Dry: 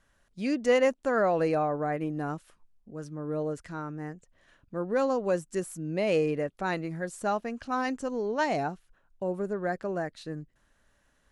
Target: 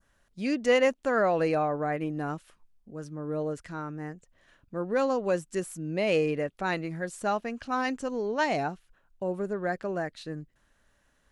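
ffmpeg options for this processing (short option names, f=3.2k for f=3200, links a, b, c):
-af "adynamicequalizer=threshold=0.00631:dfrequency=2800:dqfactor=0.88:tfrequency=2800:tqfactor=0.88:attack=5:release=100:ratio=0.375:range=2:mode=boostabove:tftype=bell"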